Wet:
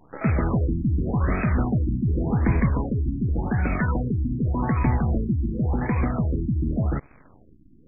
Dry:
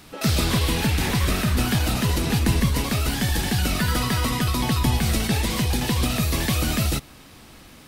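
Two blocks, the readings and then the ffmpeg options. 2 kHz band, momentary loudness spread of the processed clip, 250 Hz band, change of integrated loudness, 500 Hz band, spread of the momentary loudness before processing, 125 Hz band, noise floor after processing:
-7.0 dB, 3 LU, 0.0 dB, -2.0 dB, -1.5 dB, 2 LU, 0.0 dB, -52 dBFS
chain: -af "acrusher=bits=6:dc=4:mix=0:aa=0.000001,afftfilt=real='re*lt(b*sr/1024,340*pow(2600/340,0.5+0.5*sin(2*PI*0.88*pts/sr)))':imag='im*lt(b*sr/1024,340*pow(2600/340,0.5+0.5*sin(2*PI*0.88*pts/sr)))':win_size=1024:overlap=0.75"

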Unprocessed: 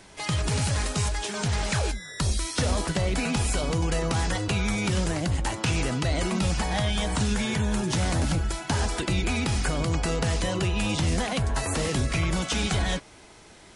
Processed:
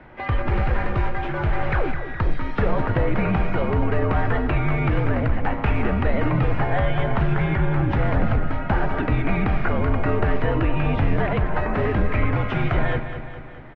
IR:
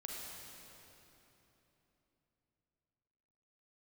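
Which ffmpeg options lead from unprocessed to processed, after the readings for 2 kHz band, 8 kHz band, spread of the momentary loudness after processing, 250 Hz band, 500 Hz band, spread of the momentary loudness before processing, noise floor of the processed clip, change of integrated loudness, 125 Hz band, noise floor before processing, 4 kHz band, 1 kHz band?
+3.5 dB, under -35 dB, 4 LU, +3.5 dB, +6.0 dB, 2 LU, -32 dBFS, +3.5 dB, +4.5 dB, -50 dBFS, -10.5 dB, +6.0 dB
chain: -filter_complex "[0:a]lowpass=f=2.1k:w=0.5412,lowpass=f=2.1k:w=1.3066,afreqshift=-59,asplit=2[a][b];[b]aecho=0:1:209|418|627|836|1045|1254:0.316|0.177|0.0992|0.0555|0.0311|0.0174[c];[a][c]amix=inputs=2:normalize=0,volume=6dB"

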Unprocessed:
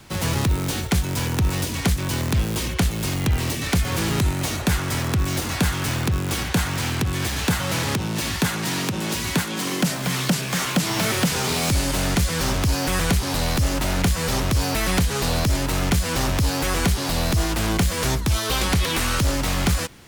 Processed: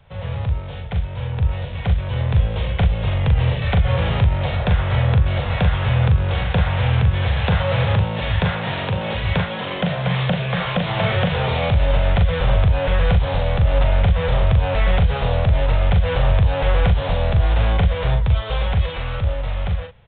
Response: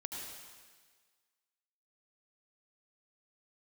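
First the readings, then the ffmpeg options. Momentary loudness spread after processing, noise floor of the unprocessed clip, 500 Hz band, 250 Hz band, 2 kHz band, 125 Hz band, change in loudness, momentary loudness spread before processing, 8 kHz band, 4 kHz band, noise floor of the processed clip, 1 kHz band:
6 LU, -28 dBFS, +4.5 dB, -3.0 dB, 0.0 dB, +5.5 dB, +2.5 dB, 3 LU, under -40 dB, -3.5 dB, -29 dBFS, +1.5 dB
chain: -filter_complex "[0:a]firequalizer=gain_entry='entry(100,0);entry(300,-25);entry(490,-2);entry(1100,-10)':delay=0.05:min_phase=1,dynaudnorm=f=270:g=17:m=11.5dB,alimiter=limit=-9.5dB:level=0:latency=1:release=52,asplit=2[a][b];[b]adelay=40,volume=-5.5dB[c];[a][c]amix=inputs=2:normalize=0,aresample=8000,aresample=44100"

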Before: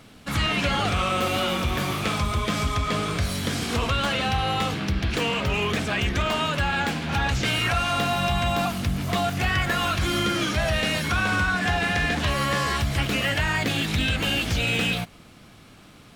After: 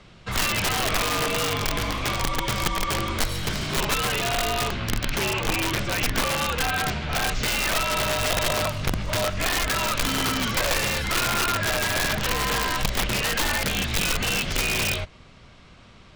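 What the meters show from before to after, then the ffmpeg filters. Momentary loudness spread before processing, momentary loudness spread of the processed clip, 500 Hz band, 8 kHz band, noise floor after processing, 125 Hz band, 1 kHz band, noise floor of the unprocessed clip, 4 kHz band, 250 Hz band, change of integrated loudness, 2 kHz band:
3 LU, 3 LU, 0.0 dB, +7.5 dB, -49 dBFS, -4.0 dB, -1.0 dB, -49 dBFS, +1.0 dB, -4.0 dB, 0.0 dB, -0.5 dB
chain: -filter_complex "[0:a]afreqshift=-85,acrossover=split=7400[a][b];[a]aeval=exprs='(mod(7.08*val(0)+1,2)-1)/7.08':c=same[c];[b]acrusher=bits=5:mix=0:aa=0.5[d];[c][d]amix=inputs=2:normalize=0"

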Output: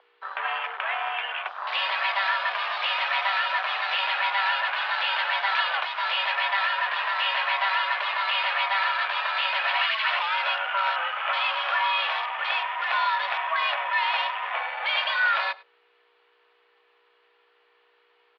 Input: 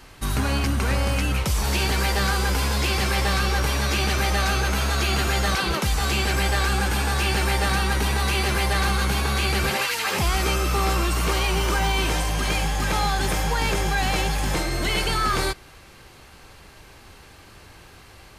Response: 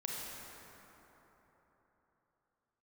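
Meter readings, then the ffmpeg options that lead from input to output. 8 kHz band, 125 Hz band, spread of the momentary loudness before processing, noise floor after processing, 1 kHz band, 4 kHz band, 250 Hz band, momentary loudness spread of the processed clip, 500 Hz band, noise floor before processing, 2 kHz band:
under -35 dB, under -40 dB, 2 LU, -64 dBFS, +1.0 dB, -1.0 dB, under -40 dB, 5 LU, -9.5 dB, -48 dBFS, +2.0 dB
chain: -af "acontrast=70,flanger=delay=6.9:depth=8.1:regen=-84:speed=0.14:shape=sinusoidal,afwtdn=0.0316,aeval=exprs='val(0)+0.0282*(sin(2*PI*60*n/s)+sin(2*PI*2*60*n/s)/2+sin(2*PI*3*60*n/s)/3+sin(2*PI*4*60*n/s)/4+sin(2*PI*5*60*n/s)/5)':c=same,highpass=f=560:t=q:w=0.5412,highpass=f=560:t=q:w=1.307,lowpass=f=3.5k:t=q:w=0.5176,lowpass=f=3.5k:t=q:w=0.7071,lowpass=f=3.5k:t=q:w=1.932,afreqshift=180,aecho=1:1:101:0.0794"

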